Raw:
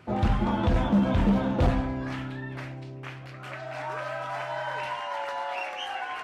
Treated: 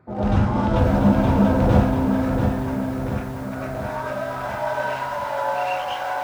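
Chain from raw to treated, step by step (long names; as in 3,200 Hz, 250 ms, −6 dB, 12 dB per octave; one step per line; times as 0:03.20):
adaptive Wiener filter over 15 samples
convolution reverb RT60 0.30 s, pre-delay 87 ms, DRR −8 dB
feedback echo at a low word length 688 ms, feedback 55%, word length 7 bits, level −5.5 dB
level −2 dB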